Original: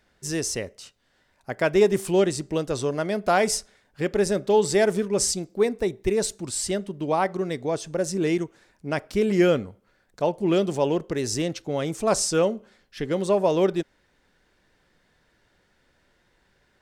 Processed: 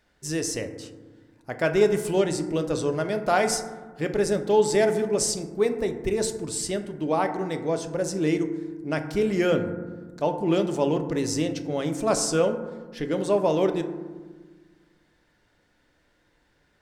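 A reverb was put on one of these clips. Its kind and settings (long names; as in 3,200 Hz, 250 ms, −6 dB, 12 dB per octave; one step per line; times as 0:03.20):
feedback delay network reverb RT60 1.4 s, low-frequency decay 1.55×, high-frequency decay 0.3×, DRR 6.5 dB
level −2 dB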